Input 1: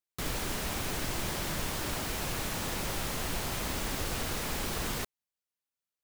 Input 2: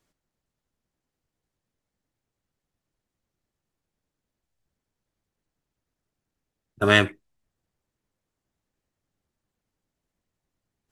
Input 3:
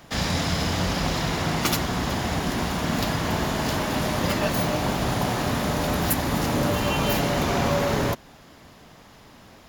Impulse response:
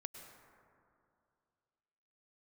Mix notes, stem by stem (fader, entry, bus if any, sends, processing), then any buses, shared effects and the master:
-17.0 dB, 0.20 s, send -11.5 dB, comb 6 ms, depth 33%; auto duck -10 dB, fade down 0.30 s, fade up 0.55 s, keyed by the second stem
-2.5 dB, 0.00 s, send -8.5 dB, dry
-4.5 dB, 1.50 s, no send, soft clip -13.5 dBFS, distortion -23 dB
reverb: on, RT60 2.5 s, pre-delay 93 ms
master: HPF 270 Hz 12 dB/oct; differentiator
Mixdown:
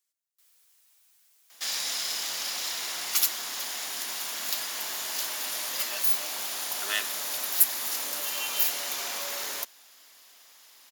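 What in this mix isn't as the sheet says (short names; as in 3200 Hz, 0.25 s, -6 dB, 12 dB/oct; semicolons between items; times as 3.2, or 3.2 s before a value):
stem 1 -17.0 dB -> -27.5 dB; stem 3 -4.5 dB -> +4.5 dB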